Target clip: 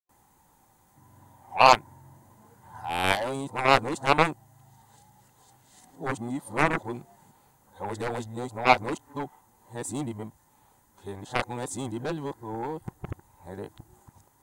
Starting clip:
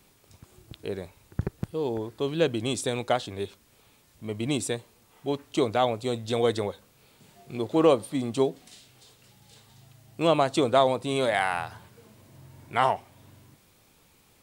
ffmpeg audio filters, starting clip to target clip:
ffmpeg -i in.wav -af "areverse,superequalizer=7b=0.631:9b=3.16:12b=0.282:13b=0.355:14b=0.398,aeval=exprs='0.75*(cos(1*acos(clip(val(0)/0.75,-1,1)))-cos(1*PI/2))+0.188*(cos(7*acos(clip(val(0)/0.75,-1,1)))-cos(7*PI/2))':channel_layout=same" out.wav

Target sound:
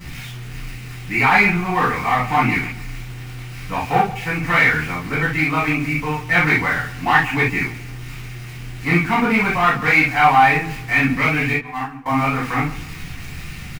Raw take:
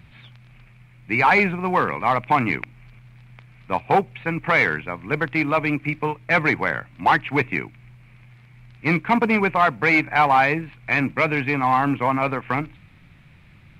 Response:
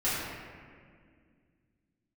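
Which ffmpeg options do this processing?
-filter_complex "[0:a]aeval=exprs='val(0)+0.5*0.0251*sgn(val(0))':channel_layout=same,equalizer=frequency=540:width_type=o:width=1.3:gain=-8,asettb=1/sr,asplit=3[link_01][link_02][link_03];[link_01]atrim=end=11.534[link_04];[link_02]atrim=start=11.53:end=12.06,asetpts=PTS-STARTPTS,afade=type=in:duration=0.004:curve=qsin,afade=type=out:start_time=0.526:duration=0.004:curve=qsin,agate=range=-30dB:threshold=-18dB:ratio=16:detection=peak[link_05];[link_03]atrim=start=12.056[link_06];[link_04][link_05]acrossfade=duration=0.004:curve1=hsin:curve2=qsin[link_07];[link_07][link_06]acrossfade=duration=0.004:curve1=qsin:curve2=hsin,asplit=2[link_08][link_09];[link_09]adelay=137,lowpass=frequency=2500:poles=1,volume=-16dB,asplit=2[link_10][link_11];[link_11]adelay=137,lowpass=frequency=2500:poles=1,volume=0.38,asplit=2[link_12][link_13];[link_13]adelay=137,lowpass=frequency=2500:poles=1,volume=0.38[link_14];[link_08][link_10][link_12][link_14]amix=inputs=4:normalize=0[link_15];[1:a]atrim=start_sample=2205,afade=type=out:start_time=0.13:duration=0.01,atrim=end_sample=6174[link_16];[link_15][link_16]afir=irnorm=-1:irlink=0,volume=-3dB"

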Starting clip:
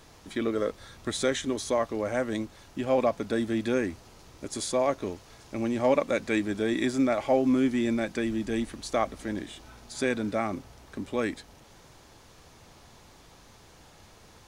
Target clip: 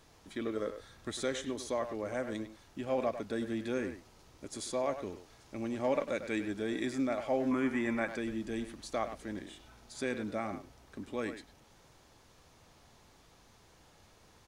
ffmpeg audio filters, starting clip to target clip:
ffmpeg -i in.wav -filter_complex "[0:a]asettb=1/sr,asplit=3[link_01][link_02][link_03];[link_01]atrim=end=7.514[link_04];[link_02]atrim=start=7.51:end=8.14,asetpts=PTS-STARTPTS,afade=type=in:duration=0.004:curve=qsin,afade=type=out:start_time=0.626:duration=0.004:curve=qsin,equalizer=frequency=1000:width_type=o:width=1:gain=11,equalizer=frequency=2000:width_type=o:width=1:gain=8,equalizer=frequency=4000:width_type=o:width=1:gain=-7[link_05];[link_03]atrim=start=8.136[link_06];[link_04][link_05]acrossfade=duration=0.004:curve1=hsin:curve2=qsin[link_07];[link_07][link_06]acrossfade=duration=0.004:curve1=qsin:curve2=hsin,asplit=2[link_08][link_09];[link_09]adelay=100,highpass=300,lowpass=3400,asoftclip=type=hard:threshold=-19.5dB,volume=-9dB[link_10];[link_08][link_10]amix=inputs=2:normalize=0,volume=-8dB" out.wav

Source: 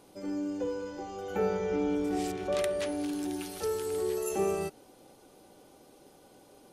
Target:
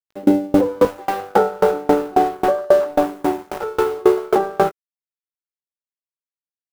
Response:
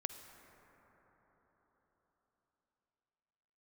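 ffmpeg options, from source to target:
-filter_complex "[0:a]lowpass=frequency=1400:width=0.5412,lowpass=frequency=1400:width=1.3066,afwtdn=0.00891,asetnsamples=nb_out_samples=441:pad=0,asendcmd='0.85 highpass f 1200',highpass=frequency=160:poles=1,acrusher=bits=10:mix=0:aa=0.000001,aeval=exprs='sgn(val(0))*max(abs(val(0))-0.00158,0)':channel_layout=same,asplit=2[link_01][link_02];[link_02]adelay=19,volume=-8dB[link_03];[link_01][link_03]amix=inputs=2:normalize=0,alimiter=level_in=35dB:limit=-1dB:release=50:level=0:latency=1,aeval=exprs='val(0)*pow(10,-30*if(lt(mod(3.7*n/s,1),2*abs(3.7)/1000),1-mod(3.7*n/s,1)/(2*abs(3.7)/1000),(mod(3.7*n/s,1)-2*abs(3.7)/1000)/(1-2*abs(3.7)/1000))/20)':channel_layout=same"

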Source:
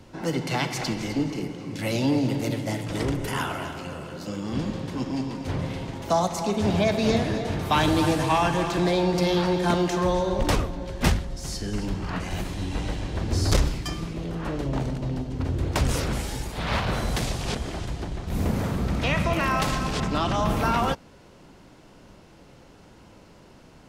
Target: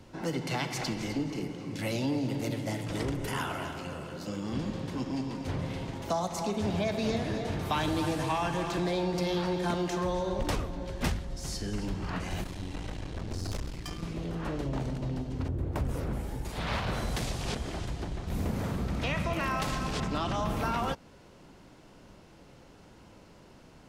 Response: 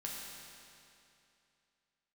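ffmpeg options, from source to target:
-filter_complex "[0:a]asettb=1/sr,asplit=3[link_01][link_02][link_03];[link_01]atrim=end=15.484[link_04];[link_02]atrim=start=15.48:end=16.45,asetpts=PTS-STARTPTS,afade=type=in:duration=0.004:curve=qsin,afade=type=out:start_time=0.966:duration=0.004:curve=qsin,equalizer=frequency=5200:width=0.35:gain=-15[link_05];[link_03]atrim=start=16.446[link_06];[link_04][link_05]acrossfade=duration=0.004:curve1=hsin:curve2=qsin[link_07];[link_07][link_06]acrossfade=duration=0.004:curve1=qsin:curve2=hsin,acompressor=threshold=-26dB:ratio=2,asettb=1/sr,asplit=3[link_08][link_09][link_10];[link_08]atrim=end=12.444[link_11];[link_09]atrim=start=12.44:end=14.03,asetpts=PTS-STARTPTS,afade=type=in:duration=0.004:curve=qsin,afade=type=out:start_time=1.586:duration=0.004:curve=qsin,aeval=exprs='(tanh(22.4*val(0)+0.7)-tanh(0.7))/22.4':channel_layout=same[link_12];[link_10]atrim=start=14.026[link_13];[link_11][link_12]acrossfade=duration=0.004:curve1=hsin:curve2=qsin[link_14];[link_14][link_13]acrossfade=duration=0.004:curve1=qsin:curve2=hsin,volume=-3.5dB"

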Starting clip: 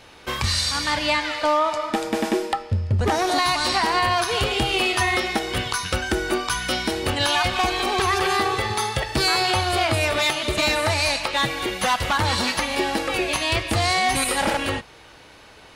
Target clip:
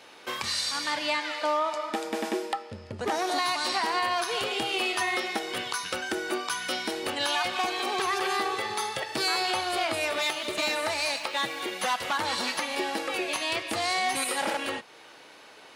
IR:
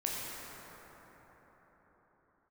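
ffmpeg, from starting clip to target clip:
-filter_complex "[0:a]highpass=270,asplit=2[link_01][link_02];[link_02]acompressor=threshold=-35dB:ratio=6,volume=-2.5dB[link_03];[link_01][link_03]amix=inputs=2:normalize=0,asettb=1/sr,asplit=3[link_04][link_05][link_06];[link_04]atrim=end=10.154[link_07];[link_05]atrim=start=10.15:end=11.72,asetpts=PTS-STARTPTS,afade=type=in:duration=0.004:curve=qsin,afade=type=out:start_time=1.566:duration=0.004:curve=qsin,aeval=exprs='sgn(val(0))*max(abs(val(0))-0.00562,0)':channel_layout=same[link_08];[link_06]atrim=start=11.716[link_09];[link_07][link_08]acrossfade=duration=0.004:curve1=hsin:curve2=qsin[link_10];[link_10][link_09]acrossfade=duration=0.004:curve1=qsin:curve2=hsin,volume=-7.5dB"

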